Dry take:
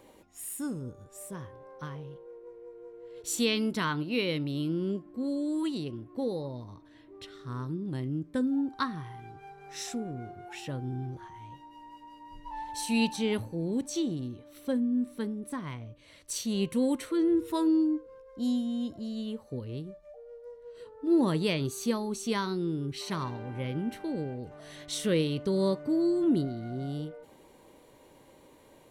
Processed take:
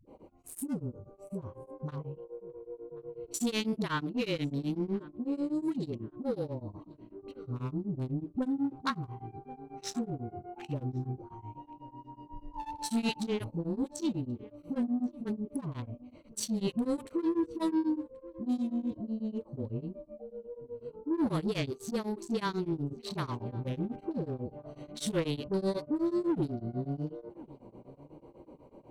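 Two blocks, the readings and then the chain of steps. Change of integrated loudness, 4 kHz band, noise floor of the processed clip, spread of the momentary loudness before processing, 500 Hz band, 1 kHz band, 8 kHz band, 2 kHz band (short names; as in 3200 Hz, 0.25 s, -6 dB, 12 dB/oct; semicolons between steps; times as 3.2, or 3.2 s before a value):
-3.5 dB, -5.0 dB, -59 dBFS, 20 LU, -3.5 dB, -2.0 dB, -4.5 dB, -4.5 dB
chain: Wiener smoothing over 25 samples; in parallel at +1 dB: compressor, threshold -39 dBFS, peak gain reduction 17 dB; on the sum: dispersion highs, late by 68 ms, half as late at 300 Hz; soft clip -22.5 dBFS, distortion -16 dB; on a send: darkening echo 1.081 s, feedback 32%, low-pass 1700 Hz, level -20.5 dB; on the sum: beating tremolo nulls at 8.1 Hz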